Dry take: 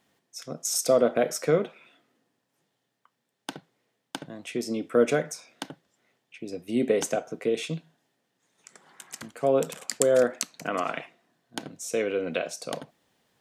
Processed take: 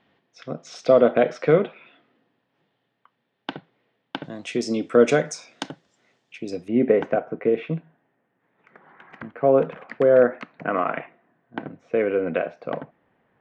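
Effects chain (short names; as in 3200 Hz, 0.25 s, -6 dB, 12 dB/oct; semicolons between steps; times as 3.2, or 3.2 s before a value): LPF 3500 Hz 24 dB/oct, from 4.24 s 7400 Hz, from 6.68 s 2100 Hz; gain +5.5 dB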